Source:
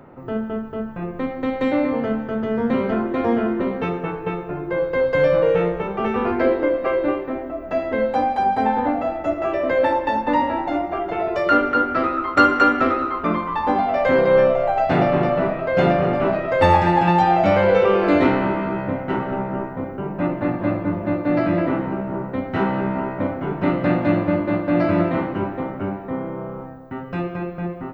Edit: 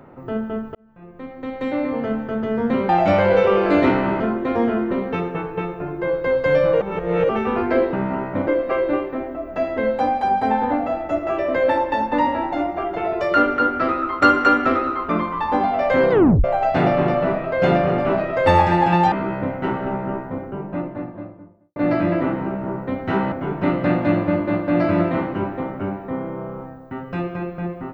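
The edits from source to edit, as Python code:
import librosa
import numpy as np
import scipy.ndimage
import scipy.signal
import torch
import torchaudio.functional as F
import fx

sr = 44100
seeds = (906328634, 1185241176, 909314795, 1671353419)

y = fx.studio_fade_out(x, sr, start_s=19.56, length_s=1.66)
y = fx.edit(y, sr, fx.fade_in_span(start_s=0.75, length_s=1.49),
    fx.reverse_span(start_s=5.5, length_s=0.48),
    fx.tape_stop(start_s=14.26, length_s=0.33),
    fx.move(start_s=17.27, length_s=1.31, to_s=2.89),
    fx.move(start_s=22.78, length_s=0.54, to_s=6.62), tone=tone)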